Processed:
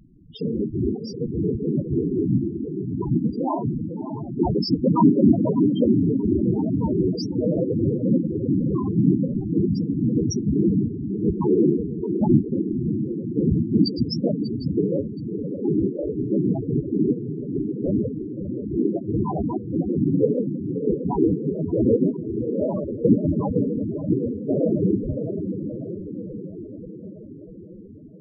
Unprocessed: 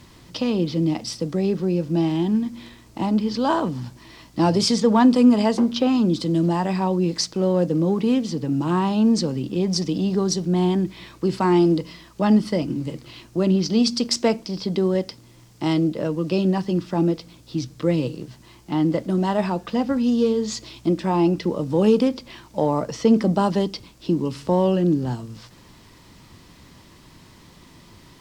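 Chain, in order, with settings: whisperiser; diffused feedback echo 0.613 s, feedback 62%, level -6.5 dB; loudest bins only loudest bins 8

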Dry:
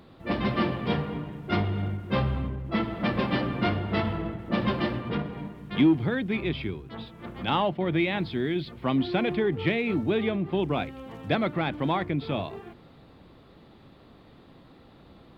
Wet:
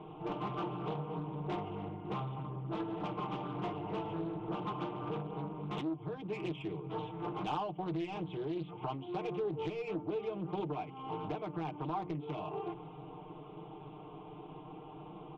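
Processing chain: steep low-pass 3200 Hz 96 dB/oct; bell 1400 Hz -11 dB 0.61 oct; notches 60/120/180/240/300 Hz; comb 6.6 ms, depth 77%; compressor 10:1, threshold -37 dBFS, peak gain reduction 25 dB; overdrive pedal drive 16 dB, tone 1700 Hz, clips at -24.5 dBFS; fixed phaser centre 370 Hz, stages 8; outdoor echo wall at 210 m, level -23 dB; Doppler distortion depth 0.32 ms; gain +2.5 dB

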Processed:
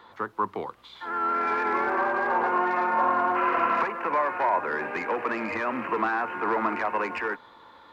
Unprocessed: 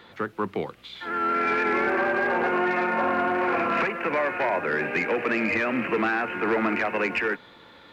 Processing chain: spectral repair 3.39–3.75, 720–3300 Hz after; fifteen-band EQ 160 Hz -6 dB, 1000 Hz +12 dB, 2500 Hz -5 dB; gain -5 dB

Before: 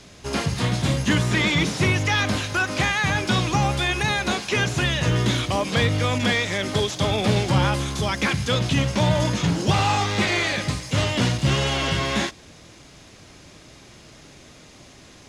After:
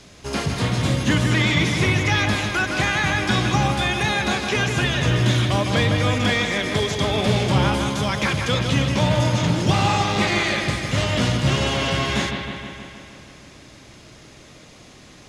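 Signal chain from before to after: analogue delay 0.157 s, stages 4096, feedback 68%, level -6 dB

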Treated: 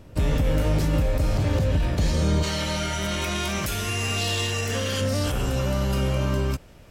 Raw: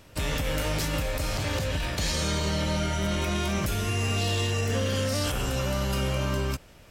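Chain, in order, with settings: tilt shelf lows +7 dB, about 810 Hz, from 2.42 s lows -3 dB, from 5 s lows +3 dB; gain +1.5 dB

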